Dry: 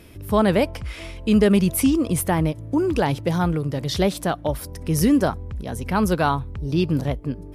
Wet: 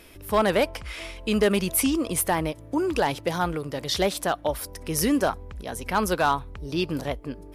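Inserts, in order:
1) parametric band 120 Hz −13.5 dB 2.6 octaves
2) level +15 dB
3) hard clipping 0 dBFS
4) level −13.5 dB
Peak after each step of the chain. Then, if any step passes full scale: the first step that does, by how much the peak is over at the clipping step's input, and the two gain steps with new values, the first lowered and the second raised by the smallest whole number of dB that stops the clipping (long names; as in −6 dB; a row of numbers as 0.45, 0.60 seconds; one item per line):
−8.5, +6.5, 0.0, −13.5 dBFS
step 2, 6.5 dB
step 2 +8 dB, step 4 −6.5 dB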